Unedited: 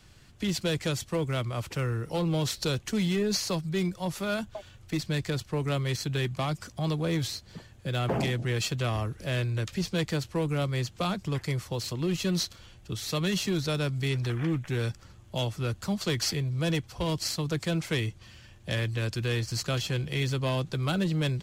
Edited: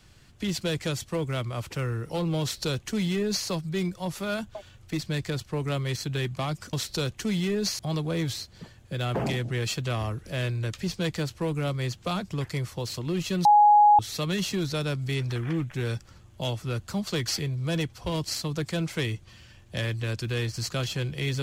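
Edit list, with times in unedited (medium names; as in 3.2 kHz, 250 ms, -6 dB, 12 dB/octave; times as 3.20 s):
2.41–3.47 s: copy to 6.73 s
12.39–12.93 s: bleep 833 Hz -13 dBFS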